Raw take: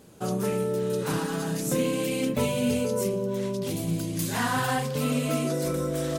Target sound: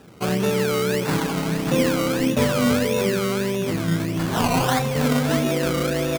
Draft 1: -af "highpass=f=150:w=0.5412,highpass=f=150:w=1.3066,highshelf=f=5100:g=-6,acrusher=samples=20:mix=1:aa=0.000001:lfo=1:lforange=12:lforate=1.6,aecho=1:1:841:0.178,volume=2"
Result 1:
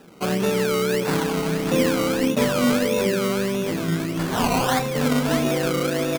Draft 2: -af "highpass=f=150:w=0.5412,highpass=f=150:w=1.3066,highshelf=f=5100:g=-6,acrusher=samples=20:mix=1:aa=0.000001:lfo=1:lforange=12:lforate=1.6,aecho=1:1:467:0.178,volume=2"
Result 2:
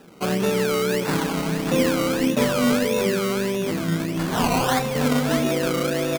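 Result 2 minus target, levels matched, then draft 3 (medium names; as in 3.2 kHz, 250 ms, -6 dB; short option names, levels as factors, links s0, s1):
125 Hz band -2.5 dB
-af "highpass=f=45:w=0.5412,highpass=f=45:w=1.3066,highshelf=f=5100:g=-6,acrusher=samples=20:mix=1:aa=0.000001:lfo=1:lforange=12:lforate=1.6,aecho=1:1:467:0.178,volume=2"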